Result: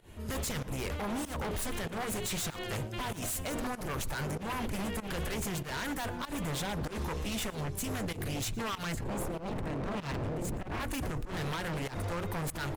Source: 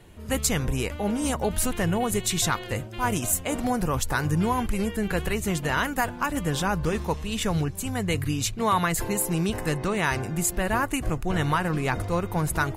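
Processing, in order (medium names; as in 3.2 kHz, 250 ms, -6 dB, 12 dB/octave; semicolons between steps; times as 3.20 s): 8.94–10.80 s: RIAA curve playback; hum notches 60/120/180/240/300/360/420/480/540 Hz; peak limiter -22 dBFS, peak gain reduction 20.5 dB; wavefolder -29.5 dBFS; volume shaper 96 bpm, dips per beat 1, -19 dB, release 141 ms; delay 116 ms -22.5 dB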